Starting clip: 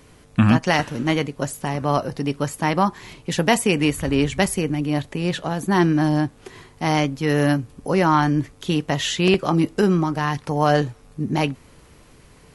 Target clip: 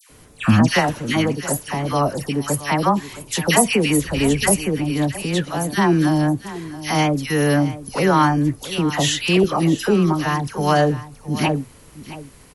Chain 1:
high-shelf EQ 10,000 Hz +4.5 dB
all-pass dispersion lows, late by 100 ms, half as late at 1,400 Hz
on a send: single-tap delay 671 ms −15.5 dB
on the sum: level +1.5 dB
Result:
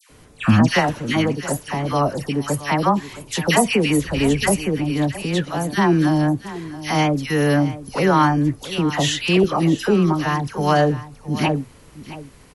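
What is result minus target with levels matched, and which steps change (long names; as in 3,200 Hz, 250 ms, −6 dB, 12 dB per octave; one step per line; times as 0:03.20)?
8,000 Hz band −4.5 dB
change: high-shelf EQ 10,000 Hz +15.5 dB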